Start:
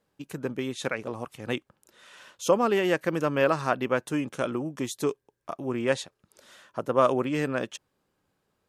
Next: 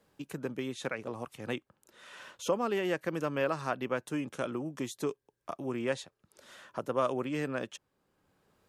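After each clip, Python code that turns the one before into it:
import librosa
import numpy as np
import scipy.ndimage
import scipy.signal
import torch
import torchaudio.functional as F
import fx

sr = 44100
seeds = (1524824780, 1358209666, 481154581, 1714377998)

y = fx.band_squash(x, sr, depth_pct=40)
y = F.gain(torch.from_numpy(y), -6.5).numpy()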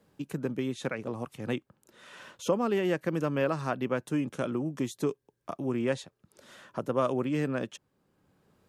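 y = fx.peak_eq(x, sr, hz=160.0, db=7.0, octaves=2.6)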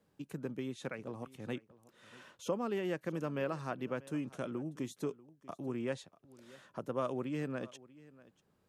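y = x + 10.0 ** (-20.5 / 20.0) * np.pad(x, (int(640 * sr / 1000.0), 0))[:len(x)]
y = F.gain(torch.from_numpy(y), -8.0).numpy()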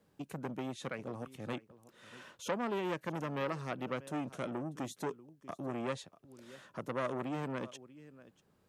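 y = fx.transformer_sat(x, sr, knee_hz=1400.0)
y = F.gain(torch.from_numpy(y), 3.0).numpy()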